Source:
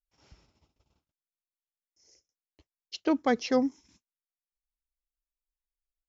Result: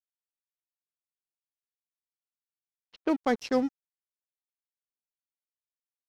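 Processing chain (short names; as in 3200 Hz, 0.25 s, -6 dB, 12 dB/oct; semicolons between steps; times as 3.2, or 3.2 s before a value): crossover distortion -41 dBFS; low-pass opened by the level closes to 1600 Hz, open at -23.5 dBFS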